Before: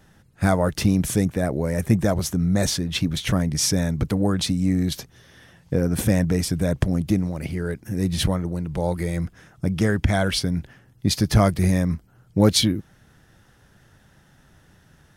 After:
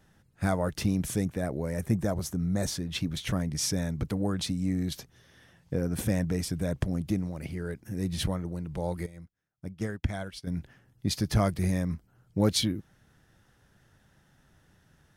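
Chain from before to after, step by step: 1.78–2.77 s: dynamic bell 2.9 kHz, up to -5 dB, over -42 dBFS, Q 0.99; 9.06–10.47 s: upward expansion 2.5:1, over -35 dBFS; trim -8 dB

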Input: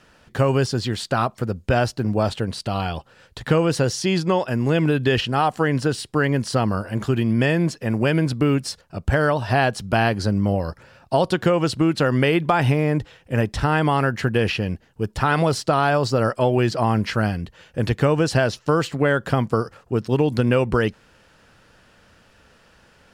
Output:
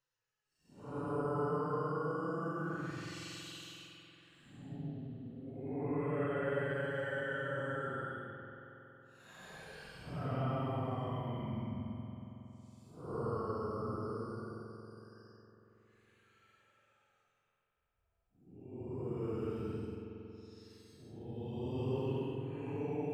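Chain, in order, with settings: Doppler pass-by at 4.68 s, 9 m/s, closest 2.7 m; reverb removal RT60 0.51 s; Paulstretch 14×, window 0.05 s, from 18.85 s; spring tank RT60 3.7 s, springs 46 ms, chirp 80 ms, DRR 3 dB; trim +13 dB

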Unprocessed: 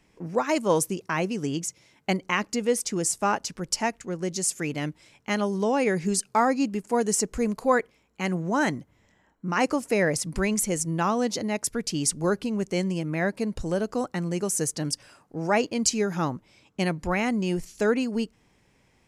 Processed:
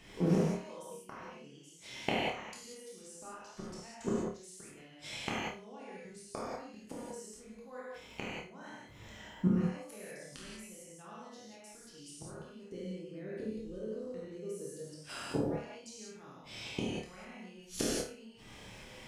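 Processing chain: peaking EQ 3.4 kHz +6 dB 0.62 oct; inverted gate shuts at -25 dBFS, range -37 dB; 12.70–14.85 s: resonant low shelf 580 Hz +8.5 dB, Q 3; flutter echo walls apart 4.7 m, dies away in 0.33 s; gated-style reverb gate 220 ms flat, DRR -6.5 dB; trim +4 dB

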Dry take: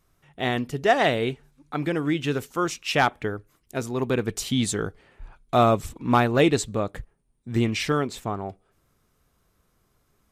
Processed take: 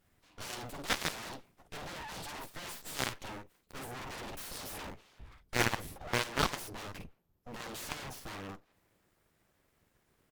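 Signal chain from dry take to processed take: early reflections 11 ms -5 dB, 52 ms -5.5 dB; in parallel at -12 dB: sample-and-hold 10×; on the sum: formant shift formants +6 st; full-wave rectifier; Chebyshev shaper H 4 -19 dB, 5 -25 dB, 7 -28 dB, 8 -18 dB, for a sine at -2 dBFS; trim -5.5 dB

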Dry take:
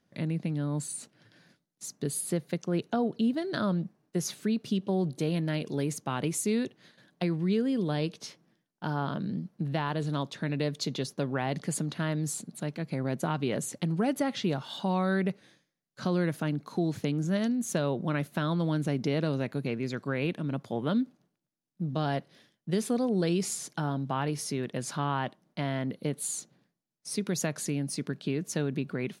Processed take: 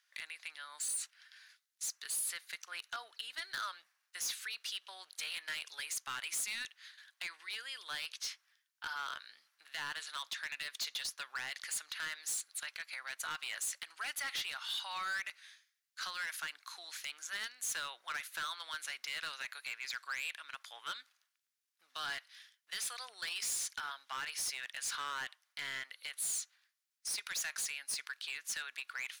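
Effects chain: high-pass 1.4 kHz 24 dB/octave; in parallel at +1 dB: peak limiter -31.5 dBFS, peak gain reduction 11 dB; on the sum: hard clipper -32.5 dBFS, distortion -9 dB; trim -1.5 dB

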